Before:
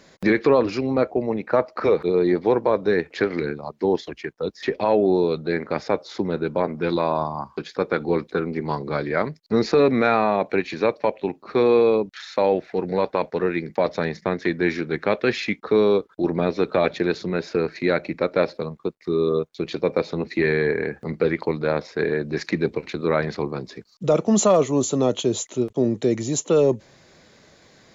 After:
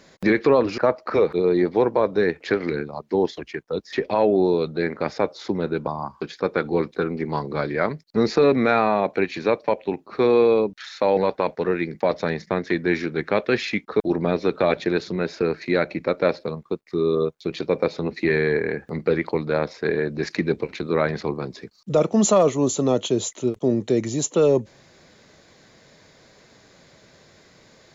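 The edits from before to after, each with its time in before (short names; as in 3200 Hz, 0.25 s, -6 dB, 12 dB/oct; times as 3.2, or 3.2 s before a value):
0.78–1.48 cut
6.57–7.23 cut
12.53–12.92 cut
15.75–16.14 cut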